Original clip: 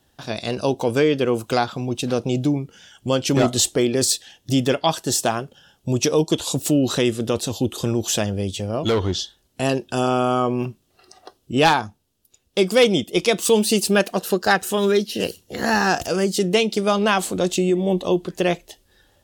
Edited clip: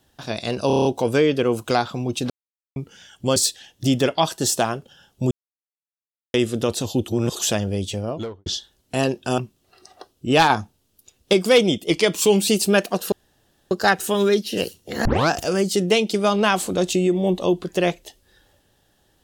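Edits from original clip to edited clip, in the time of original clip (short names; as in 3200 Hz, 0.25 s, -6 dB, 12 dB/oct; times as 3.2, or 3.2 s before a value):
0.67 stutter 0.03 s, 7 plays
2.12–2.58 mute
3.18–4.02 cut
5.97–7 mute
7.74–8.05 reverse
8.58–9.12 studio fade out
10.04–10.64 cut
11.76–12.59 gain +5 dB
13.16–13.7 speed 93%
14.34 insert room tone 0.59 s
15.68 tape start 0.25 s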